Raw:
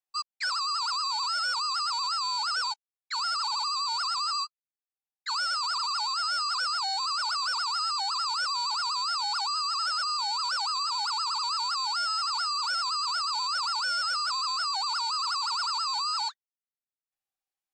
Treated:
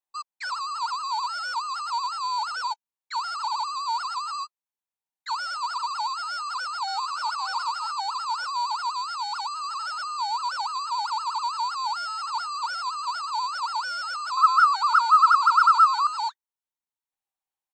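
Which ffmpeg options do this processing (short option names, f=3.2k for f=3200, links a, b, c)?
-filter_complex "[0:a]asplit=2[a][b];[b]afade=t=in:st=6.3:d=0.01,afade=t=out:st=7.36:d=0.01,aecho=0:1:570|1140|1710:0.421697|0.105424|0.026356[c];[a][c]amix=inputs=2:normalize=0,asettb=1/sr,asplit=3[d][e][f];[d]atrim=end=8.904[g];[e]atrim=start=8.9:end=9.6,asetpts=PTS-STARTPTS,afade=t=in:d=0.004:c=qsin,afade=t=out:st=0.696:d=0.004:c=qsin,equalizer=f=590:t=o:w=0.77:g=-8.5[h];[f]atrim=start=9.596[i];[g][h]acrossfade=d=0.004:c1=hsin:c2=qsin[j];[j][i]acrossfade=d=0.004:c1=qsin:c2=hsin,asettb=1/sr,asplit=3[k][l][m];[k]atrim=end=14.374[n];[l]atrim=start=14.37:end=16.07,asetpts=PTS-STARTPTS,afade=t=in:d=0.004:c=qsin,afade=t=out:st=1.696:d=0.004:c=qsin,highpass=f=1.3k:t=q:w=11[o];[m]atrim=start=16.066[p];[n][o]acrossfade=d=0.004:c1=hsin:c2=qsin[q];[q][p]acrossfade=d=0.004:c1=qsin:c2=hsin,bandreject=f=4.9k:w=6.9,acrossover=split=8000[r][s];[s]acompressor=threshold=-57dB:ratio=4:attack=1:release=60[t];[r][t]amix=inputs=2:normalize=0,equalizer=f=930:t=o:w=0.4:g=10.5,volume=-2dB"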